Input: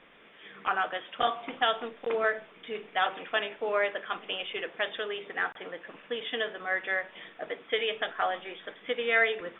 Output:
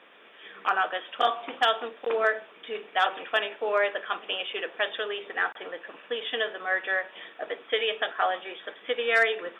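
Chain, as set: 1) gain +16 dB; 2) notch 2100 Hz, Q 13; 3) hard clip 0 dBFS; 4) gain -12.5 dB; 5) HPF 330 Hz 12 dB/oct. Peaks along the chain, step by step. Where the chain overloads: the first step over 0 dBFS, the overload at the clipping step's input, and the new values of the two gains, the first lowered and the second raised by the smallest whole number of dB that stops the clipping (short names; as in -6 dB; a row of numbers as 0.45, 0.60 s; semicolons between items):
+3.5, +3.0, 0.0, -12.5, -10.0 dBFS; step 1, 3.0 dB; step 1 +13 dB, step 4 -9.5 dB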